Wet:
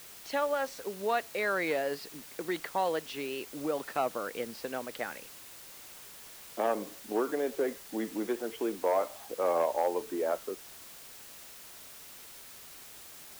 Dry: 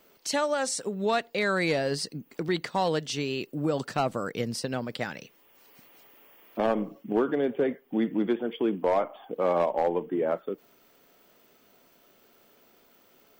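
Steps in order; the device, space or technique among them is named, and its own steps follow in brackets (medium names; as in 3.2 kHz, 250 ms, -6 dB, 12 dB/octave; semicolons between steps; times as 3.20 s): wax cylinder (band-pass 360–2700 Hz; wow and flutter; white noise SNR 15 dB); trim -2.5 dB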